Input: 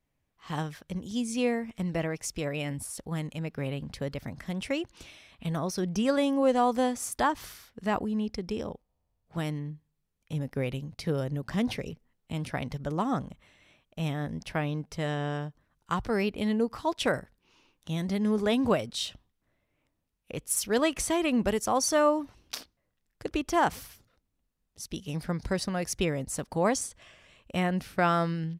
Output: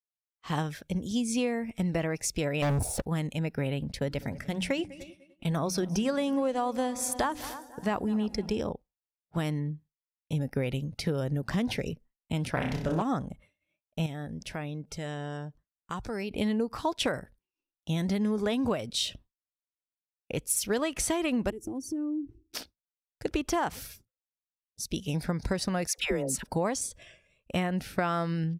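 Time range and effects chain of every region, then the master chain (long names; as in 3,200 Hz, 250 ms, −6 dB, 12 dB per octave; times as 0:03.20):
0:02.62–0:03.02: drawn EQ curve 140 Hz 0 dB, 220 Hz −6 dB, 780 Hz +4 dB, 1,200 Hz −18 dB + leveller curve on the samples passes 5
0:03.92–0:08.61: noise gate −47 dBFS, range −12 dB + mains-hum notches 60/120/180/240/300 Hz + echo machine with several playback heads 99 ms, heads second and third, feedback 47%, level −22 dB
0:12.51–0:13.02: flutter between parallel walls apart 5.3 metres, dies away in 0.51 s + highs frequency-modulated by the lows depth 0.29 ms
0:14.06–0:16.31: dynamic equaliser 7,300 Hz, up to +6 dB, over −57 dBFS, Q 1.1 + downward compressor 2 to 1, threshold −44 dBFS
0:21.50–0:22.55: drawn EQ curve 130 Hz 0 dB, 190 Hz −13 dB, 320 Hz +11 dB, 550 Hz −18 dB, 1,000 Hz −23 dB, 2,400 Hz −18 dB, 3,900 Hz −22 dB, 9,700 Hz −16 dB + downward compressor 4 to 1, threshold −37 dBFS
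0:25.87–0:26.43: parametric band 110 Hz −9.5 dB 1.9 octaves + all-pass dispersion lows, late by 115 ms, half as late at 730 Hz
whole clip: noise reduction from a noise print of the clip's start 11 dB; downward expander −50 dBFS; downward compressor 10 to 1, threshold −29 dBFS; level +4.5 dB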